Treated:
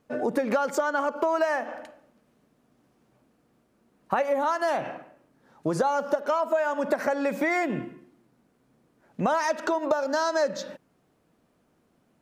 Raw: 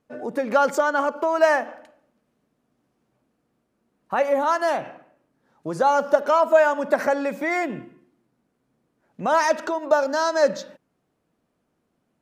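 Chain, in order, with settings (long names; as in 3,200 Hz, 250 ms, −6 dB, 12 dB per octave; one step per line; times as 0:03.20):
downward compressor 10 to 1, threshold −27 dBFS, peak gain reduction 16.5 dB
level +5.5 dB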